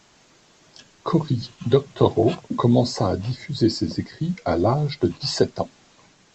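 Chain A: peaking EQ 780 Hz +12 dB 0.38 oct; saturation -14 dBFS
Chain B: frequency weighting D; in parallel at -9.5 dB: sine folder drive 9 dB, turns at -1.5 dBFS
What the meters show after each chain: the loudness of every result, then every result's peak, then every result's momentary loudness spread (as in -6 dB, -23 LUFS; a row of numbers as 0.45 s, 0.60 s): -24.5 LUFS, -15.0 LUFS; -14.0 dBFS, -3.5 dBFS; 8 LU, 12 LU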